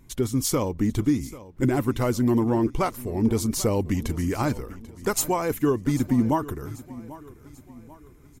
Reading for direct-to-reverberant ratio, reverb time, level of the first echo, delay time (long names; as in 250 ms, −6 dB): no reverb audible, no reverb audible, −18.0 dB, 790 ms